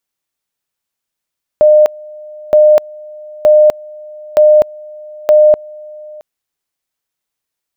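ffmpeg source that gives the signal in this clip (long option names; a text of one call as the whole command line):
ffmpeg -f lavfi -i "aevalsrc='pow(10,(-3-25*gte(mod(t,0.92),0.25))/20)*sin(2*PI*607*t)':duration=4.6:sample_rate=44100" out.wav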